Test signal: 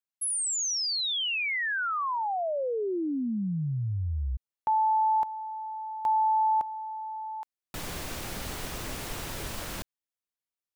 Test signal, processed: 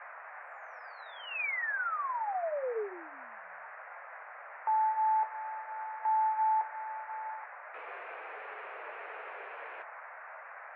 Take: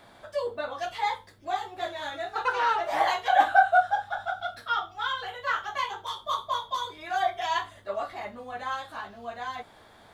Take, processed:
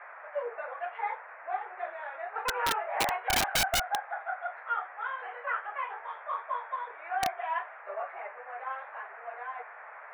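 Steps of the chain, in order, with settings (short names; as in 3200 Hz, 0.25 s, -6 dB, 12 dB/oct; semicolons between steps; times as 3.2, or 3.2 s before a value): band noise 590–1900 Hz -43 dBFS; Chebyshev band-pass 430–2500 Hz, order 4; flange 0.25 Hz, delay 5.5 ms, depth 6.5 ms, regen -49%; wrapped overs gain 20.5 dB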